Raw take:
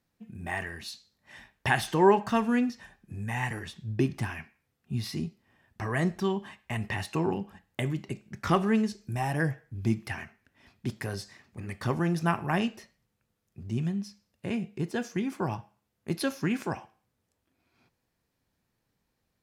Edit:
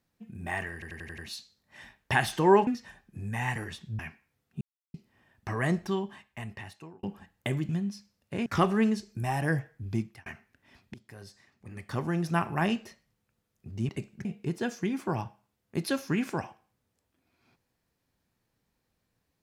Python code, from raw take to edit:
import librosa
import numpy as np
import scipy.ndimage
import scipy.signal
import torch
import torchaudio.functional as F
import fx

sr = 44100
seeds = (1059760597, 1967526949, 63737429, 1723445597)

y = fx.edit(x, sr, fx.stutter(start_s=0.73, slice_s=0.09, count=6),
    fx.cut(start_s=2.22, length_s=0.4),
    fx.cut(start_s=3.94, length_s=0.38),
    fx.silence(start_s=4.94, length_s=0.33),
    fx.fade_out_span(start_s=6.01, length_s=1.35),
    fx.swap(start_s=8.02, length_s=0.36, other_s=13.81, other_length_s=0.77),
    fx.fade_out_span(start_s=9.75, length_s=0.43),
    fx.fade_in_from(start_s=10.86, length_s=1.59, floor_db=-21.5), tone=tone)